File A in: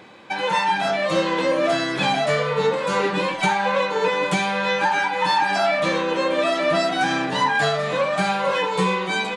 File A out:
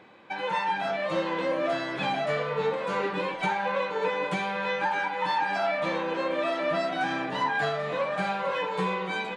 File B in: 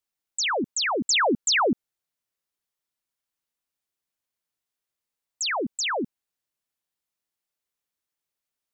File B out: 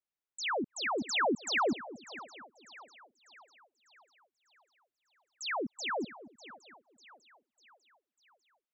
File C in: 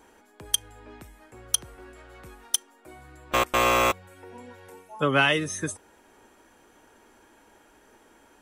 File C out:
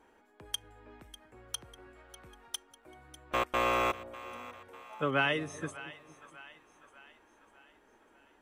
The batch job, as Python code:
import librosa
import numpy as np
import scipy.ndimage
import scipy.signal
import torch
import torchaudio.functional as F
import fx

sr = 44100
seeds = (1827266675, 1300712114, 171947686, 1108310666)

y = fx.bass_treble(x, sr, bass_db=-2, treble_db=-10)
y = fx.echo_split(y, sr, split_hz=690.0, low_ms=230, high_ms=597, feedback_pct=52, wet_db=-16)
y = y * 10.0 ** (-7.0 / 20.0)